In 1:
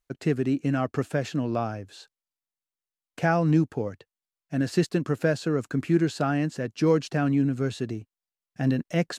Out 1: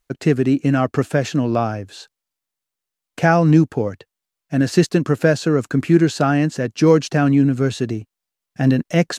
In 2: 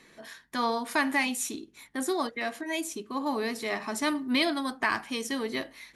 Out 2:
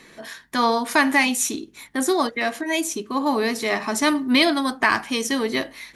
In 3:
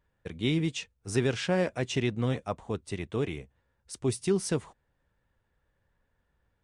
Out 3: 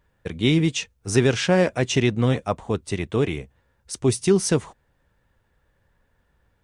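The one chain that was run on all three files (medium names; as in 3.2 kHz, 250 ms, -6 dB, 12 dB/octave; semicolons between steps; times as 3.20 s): dynamic bell 6.1 kHz, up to +4 dB, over -56 dBFS, Q 5.3; trim +8.5 dB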